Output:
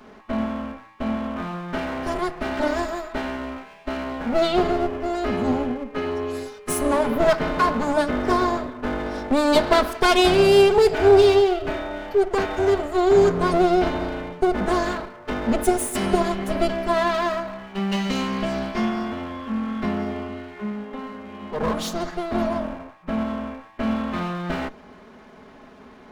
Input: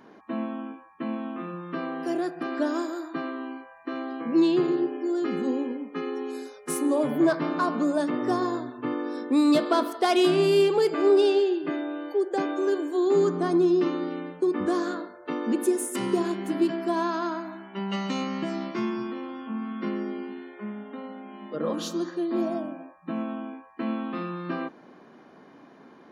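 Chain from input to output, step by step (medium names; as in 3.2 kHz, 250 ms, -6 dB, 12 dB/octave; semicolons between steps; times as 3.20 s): comb filter that takes the minimum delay 4.7 ms; trim +6.5 dB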